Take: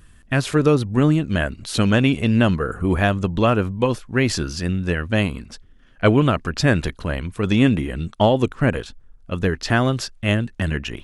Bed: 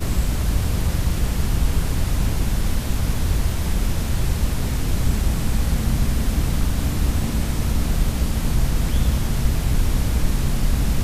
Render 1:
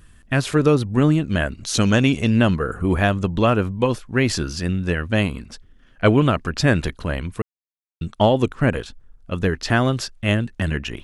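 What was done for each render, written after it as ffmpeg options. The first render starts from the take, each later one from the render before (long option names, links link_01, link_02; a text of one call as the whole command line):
ffmpeg -i in.wav -filter_complex "[0:a]asettb=1/sr,asplit=3[link_01][link_02][link_03];[link_01]atrim=end=1.634[link_04];[link_02]atrim=start=1.63:end=2.3,asetpts=PTS-STARTPTS,afade=type=in:duration=0.004:curve=qsin,afade=type=out:start_time=0.666:duration=0.004:curve=qsin,equalizer=frequency=6200:width=2.6:gain=10.5[link_05];[link_03]atrim=start=2.296[link_06];[link_04][link_05]acrossfade=duration=0.004:curve1=hsin:curve2=qsin[link_07];[link_07][link_06]acrossfade=duration=0.004:curve1=qsin:curve2=hsin,asplit=3[link_08][link_09][link_10];[link_08]atrim=end=7.42,asetpts=PTS-STARTPTS,afade=type=out:start_time=7.416:duration=0.004:curve=hsin[link_11];[link_09]atrim=start=7.42:end=8.01,asetpts=PTS-STARTPTS,volume=0[link_12];[link_10]atrim=start=8.01,asetpts=PTS-STARTPTS,afade=type=in:duration=0.004:curve=hsin[link_13];[link_11][link_12][link_13]concat=n=3:v=0:a=1" out.wav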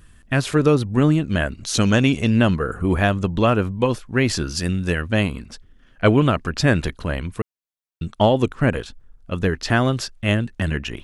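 ffmpeg -i in.wav -filter_complex "[0:a]asettb=1/sr,asplit=3[link_01][link_02][link_03];[link_01]atrim=end=4.554[link_04];[link_02]atrim=start=4.55:end=5.02,asetpts=PTS-STARTPTS,afade=type=in:duration=0.004:curve=qsin,afade=type=out:start_time=0.466:duration=0.004:curve=qsin,highshelf=frequency=5600:gain=11[link_05];[link_03]atrim=start=5.016[link_06];[link_04][link_05]acrossfade=duration=0.004:curve1=hsin:curve2=qsin[link_07];[link_07][link_06]acrossfade=duration=0.004:curve1=qsin:curve2=hsin" out.wav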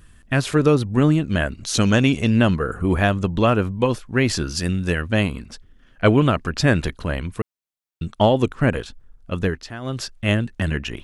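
ffmpeg -i in.wav -filter_complex "[0:a]asplit=3[link_01][link_02][link_03];[link_01]atrim=end=9.7,asetpts=PTS-STARTPTS,afade=type=out:start_time=9.33:duration=0.37:curve=qsin:silence=0.158489[link_04];[link_02]atrim=start=9.7:end=9.81,asetpts=PTS-STARTPTS,volume=-16dB[link_05];[link_03]atrim=start=9.81,asetpts=PTS-STARTPTS,afade=type=in:duration=0.37:curve=qsin:silence=0.158489[link_06];[link_04][link_05][link_06]concat=n=3:v=0:a=1" out.wav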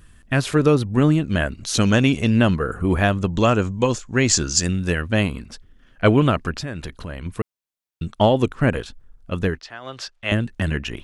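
ffmpeg -i in.wav -filter_complex "[0:a]asettb=1/sr,asplit=3[link_01][link_02][link_03];[link_01]atrim=end=3.334[link_04];[link_02]atrim=start=3.33:end=4.67,asetpts=PTS-STARTPTS,afade=type=in:duration=0.004:curve=qsin,afade=type=out:start_time=1.336:duration=0.004:curve=qsin,lowpass=frequency=7000:width_type=q:width=5.9[link_05];[link_03]atrim=start=4.666[link_06];[link_04][link_05]acrossfade=duration=0.004:curve1=hsin:curve2=qsin[link_07];[link_07][link_06]acrossfade=duration=0.004:curve1=qsin:curve2=hsin,asettb=1/sr,asplit=3[link_08][link_09][link_10];[link_08]atrim=end=6.514[link_11];[link_09]atrim=start=6.51:end=7.26,asetpts=PTS-STARTPTS,afade=type=in:duration=0.004:curve=qsin,afade=type=out:start_time=0.746:duration=0.004:curve=qsin,acompressor=threshold=-29dB:ratio=3:attack=3.2:release=140:knee=1:detection=peak[link_12];[link_10]atrim=start=7.256[link_13];[link_11][link_12]acrossfade=duration=0.004:curve1=hsin:curve2=qsin[link_14];[link_14][link_13]acrossfade=duration=0.004:curve1=qsin:curve2=hsin,asettb=1/sr,asplit=3[link_15][link_16][link_17];[link_15]atrim=end=9.594[link_18];[link_16]atrim=start=9.59:end=10.32,asetpts=PTS-STARTPTS,afade=type=in:duration=0.004:curve=qsin,afade=type=out:start_time=0.726:duration=0.004:curve=qsin,acrossover=split=490 6500:gain=0.178 1 0.178[link_19][link_20][link_21];[link_19][link_20][link_21]amix=inputs=3:normalize=0[link_22];[link_17]atrim=start=10.316[link_23];[link_18][link_22]acrossfade=duration=0.004:curve1=hsin:curve2=qsin[link_24];[link_24][link_23]acrossfade=duration=0.004:curve1=qsin:curve2=hsin" out.wav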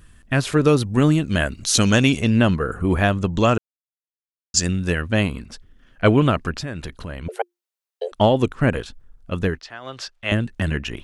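ffmpeg -i in.wav -filter_complex "[0:a]asettb=1/sr,asplit=3[link_01][link_02][link_03];[link_01]atrim=end=0.664[link_04];[link_02]atrim=start=0.66:end=2.2,asetpts=PTS-STARTPTS,afade=type=in:duration=0.004:curve=qsin,afade=type=out:start_time=1.536:duration=0.004:curve=qsin,highshelf=frequency=3700:gain=8[link_05];[link_03]atrim=start=2.196[link_06];[link_04][link_05]acrossfade=duration=0.004:curve1=hsin:curve2=qsin[link_07];[link_07][link_06]acrossfade=duration=0.004:curve1=qsin:curve2=hsin,asettb=1/sr,asplit=3[link_08][link_09][link_10];[link_08]atrim=end=7.284[link_11];[link_09]atrim=start=7.28:end=8.12,asetpts=PTS-STARTPTS,afade=type=in:duration=0.004:curve=qsin,afade=type=out:start_time=0.836:duration=0.004:curve=qsin,afreqshift=350[link_12];[link_10]atrim=start=8.116[link_13];[link_11][link_12]acrossfade=duration=0.004:curve1=hsin:curve2=qsin[link_14];[link_14][link_13]acrossfade=duration=0.004:curve1=qsin:curve2=hsin,asplit=3[link_15][link_16][link_17];[link_15]atrim=end=3.58,asetpts=PTS-STARTPTS,afade=type=out:start_time=3.576:duration=0.004:curve=hsin[link_18];[link_16]atrim=start=3.58:end=4.54,asetpts=PTS-STARTPTS,volume=0[link_19];[link_17]atrim=start=4.54,asetpts=PTS-STARTPTS,afade=type=in:duration=0.004:curve=hsin[link_20];[link_18][link_19][link_20]concat=n=3:v=0:a=1" out.wav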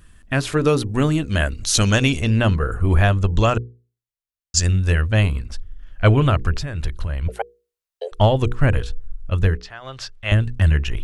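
ffmpeg -i in.wav -af "bandreject=frequency=60:width_type=h:width=6,bandreject=frequency=120:width_type=h:width=6,bandreject=frequency=180:width_type=h:width=6,bandreject=frequency=240:width_type=h:width=6,bandreject=frequency=300:width_type=h:width=6,bandreject=frequency=360:width_type=h:width=6,bandreject=frequency=420:width_type=h:width=6,bandreject=frequency=480:width_type=h:width=6,asubboost=boost=8.5:cutoff=77" out.wav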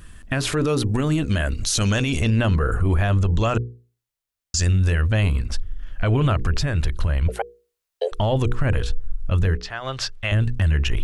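ffmpeg -i in.wav -filter_complex "[0:a]asplit=2[link_01][link_02];[link_02]acompressor=threshold=-23dB:ratio=6,volume=0dB[link_03];[link_01][link_03]amix=inputs=2:normalize=0,alimiter=limit=-12.5dB:level=0:latency=1:release=25" out.wav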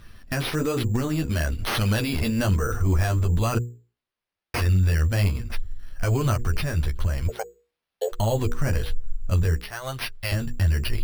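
ffmpeg -i in.wav -af "acrusher=samples=6:mix=1:aa=0.000001,flanger=delay=8.3:depth=4.9:regen=-14:speed=1.1:shape=sinusoidal" out.wav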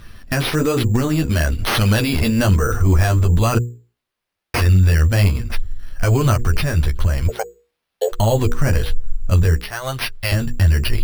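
ffmpeg -i in.wav -af "volume=7dB" out.wav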